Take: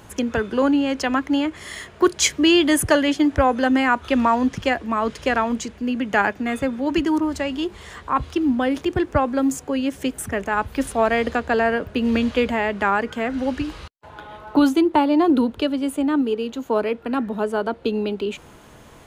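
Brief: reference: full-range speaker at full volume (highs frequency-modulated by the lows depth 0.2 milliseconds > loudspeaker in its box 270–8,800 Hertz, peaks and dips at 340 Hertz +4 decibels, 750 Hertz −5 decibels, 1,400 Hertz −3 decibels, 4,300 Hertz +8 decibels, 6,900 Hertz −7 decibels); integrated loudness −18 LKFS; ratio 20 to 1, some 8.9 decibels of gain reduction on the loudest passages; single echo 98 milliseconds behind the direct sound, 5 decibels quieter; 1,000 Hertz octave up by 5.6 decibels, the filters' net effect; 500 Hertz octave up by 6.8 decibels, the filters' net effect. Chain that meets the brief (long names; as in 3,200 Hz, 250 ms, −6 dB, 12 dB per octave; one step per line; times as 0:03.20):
parametric band 500 Hz +7 dB
parametric band 1,000 Hz +7.5 dB
downward compressor 20 to 1, threshold −13 dBFS
single-tap delay 98 ms −5 dB
highs frequency-modulated by the lows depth 0.2 ms
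loudspeaker in its box 270–8,800 Hz, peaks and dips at 340 Hz +4 dB, 750 Hz −5 dB, 1,400 Hz −3 dB, 4,300 Hz +8 dB, 6,900 Hz −7 dB
level +1.5 dB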